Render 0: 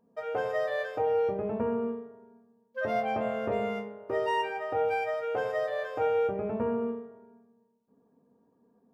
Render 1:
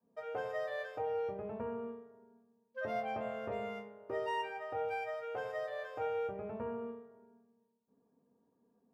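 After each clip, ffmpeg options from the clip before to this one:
-af "adynamicequalizer=threshold=0.00562:dfrequency=280:dqfactor=1:tfrequency=280:tqfactor=1:attack=5:release=100:ratio=0.375:range=3:mode=cutabove:tftype=bell,volume=0.422"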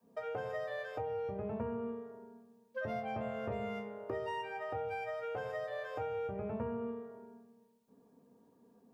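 -filter_complex "[0:a]acrossover=split=190[s0][s1];[s1]acompressor=threshold=0.00398:ratio=4[s2];[s0][s2]amix=inputs=2:normalize=0,volume=2.82"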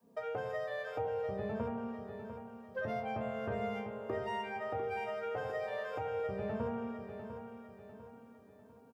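-af "aecho=1:1:699|1398|2097|2796|3495:0.355|0.153|0.0656|0.0282|0.0121,volume=1.12"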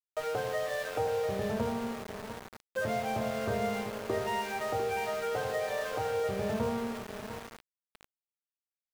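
-af "aeval=exprs='val(0)*gte(abs(val(0)),0.00708)':c=same,volume=1.88"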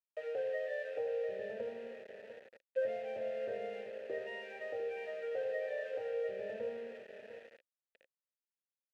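-filter_complex "[0:a]asplit=3[s0][s1][s2];[s0]bandpass=f=530:t=q:w=8,volume=1[s3];[s1]bandpass=f=1840:t=q:w=8,volume=0.501[s4];[s2]bandpass=f=2480:t=q:w=8,volume=0.355[s5];[s3][s4][s5]amix=inputs=3:normalize=0,volume=1.19"

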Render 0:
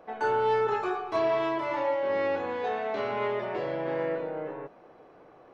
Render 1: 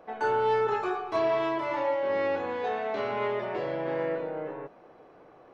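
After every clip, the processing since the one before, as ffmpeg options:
-af anull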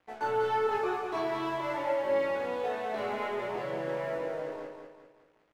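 -filter_complex "[0:a]aeval=exprs='sgn(val(0))*max(abs(val(0))-0.00335,0)':c=same,flanger=delay=16.5:depth=7.3:speed=0.39,asplit=2[s0][s1];[s1]aecho=0:1:197|394|591|788|985:0.531|0.218|0.0892|0.0366|0.015[s2];[s0][s2]amix=inputs=2:normalize=0"

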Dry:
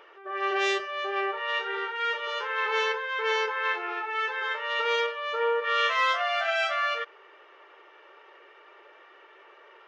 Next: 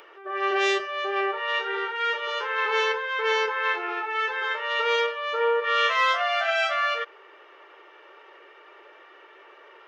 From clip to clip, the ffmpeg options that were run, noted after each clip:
-filter_complex "[0:a]equalizer=f=300:t=o:w=0.77:g=2.5,acrossover=split=1200|1400[s0][s1][s2];[s2]acompressor=mode=upward:threshold=0.00141:ratio=2.5[s3];[s0][s1][s3]amix=inputs=3:normalize=0,volume=1.33"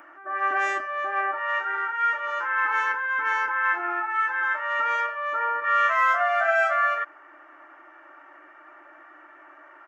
-af "firequalizer=gain_entry='entry(150,0);entry(300,13);entry(430,-23);entry(620,4);entry(930,0);entry(1500,6);entry(2700,-11);entry(3800,-20);entry(7300,-1);entry(11000,-5)':delay=0.05:min_phase=1"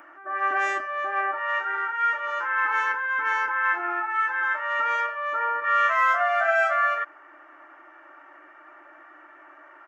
-af anull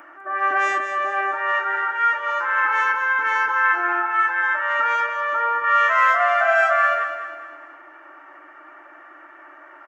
-af "aecho=1:1:203|406|609|812|1015:0.355|0.163|0.0751|0.0345|0.0159,volume=1.58"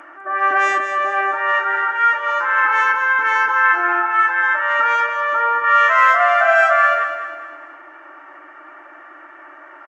-af "aresample=22050,aresample=44100,volume=1.58"

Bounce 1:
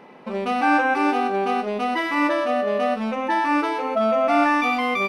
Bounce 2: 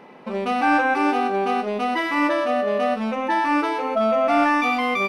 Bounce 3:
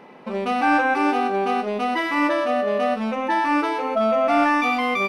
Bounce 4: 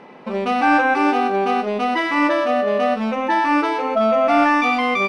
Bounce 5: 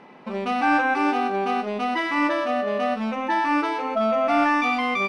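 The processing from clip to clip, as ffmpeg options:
-af "acontrast=42,volume=0.562"
-af anull
-af "lowpass=8300,volume=1.41"
-af "equalizer=f=490:t=o:w=0.6:g=-4,volume=0.631"

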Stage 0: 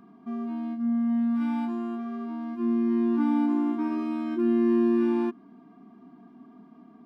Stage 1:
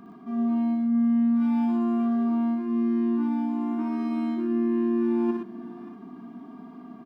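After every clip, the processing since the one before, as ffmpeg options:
-af "areverse,acompressor=threshold=0.0178:ratio=6,areverse,aecho=1:1:60|99|120|580|635:0.631|0.473|0.501|0.188|0.119,volume=1.88"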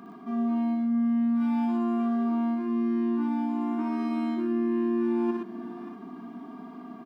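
-af "highpass=f=270:p=1,acompressor=threshold=0.0251:ratio=1.5,volume=1.58"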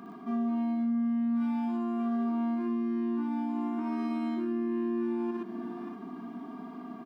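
-af "alimiter=level_in=1.06:limit=0.0631:level=0:latency=1:release=197,volume=0.944"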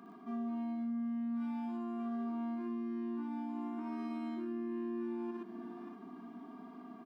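-af "highpass=160,volume=0.422"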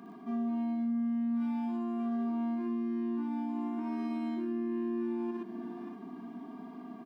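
-af "lowshelf=f=86:g=12,bandreject=f=1300:w=5.2,volume=1.58"

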